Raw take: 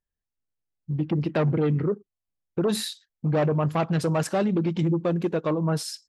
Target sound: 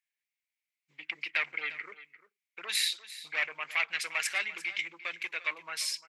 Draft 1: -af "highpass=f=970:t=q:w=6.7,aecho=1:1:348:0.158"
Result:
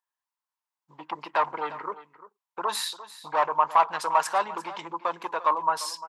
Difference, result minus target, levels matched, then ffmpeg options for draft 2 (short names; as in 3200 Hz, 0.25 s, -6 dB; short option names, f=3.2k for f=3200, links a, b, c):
1000 Hz band +15.5 dB
-af "highpass=f=2.2k:t=q:w=6.7,aecho=1:1:348:0.158"